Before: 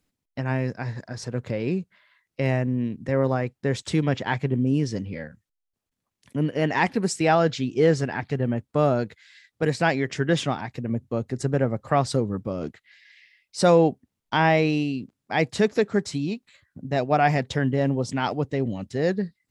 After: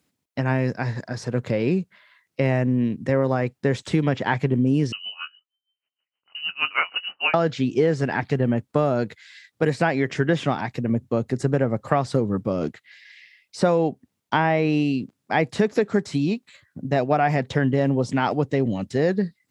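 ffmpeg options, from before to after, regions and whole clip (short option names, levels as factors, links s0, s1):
-filter_complex "[0:a]asettb=1/sr,asplit=3[s0][s1][s2];[s0]atrim=end=4.924[s3];[s1]atrim=start=4.92:end=7.34,asetpts=PTS-STARTPTS,afade=t=in:d=0.004:c=qsin,afade=t=out:st=2.416:d=0.004:c=qsin,asplit=2[s4][s5];[s5]adelay=22,volume=0.376[s6];[s4][s6]amix=inputs=2:normalize=0,atrim=end_sample=106722,lowpass=f=2600:t=q:w=0.5098,lowpass=f=2600:t=q:w=0.6013,lowpass=f=2600:t=q:w=0.9,lowpass=f=2600:t=q:w=2.563,afreqshift=-3100,aeval=exprs='val(0)*pow(10,-20*(0.5-0.5*cos(2*PI*6.4*n/s))/20)':c=same[s7];[s2]atrim=start=7.336[s8];[s3][s7]acrossfade=d=0.004:c1=hsin:c2=qsin[s9];[s9][s8]acrossfade=d=0.004:c1=qsin:c2=hsin,acrossover=split=2600[s10][s11];[s11]acompressor=threshold=0.00891:ratio=4:attack=1:release=60[s12];[s10][s12]amix=inputs=2:normalize=0,highpass=100,acompressor=threshold=0.0891:ratio=6,volume=1.88"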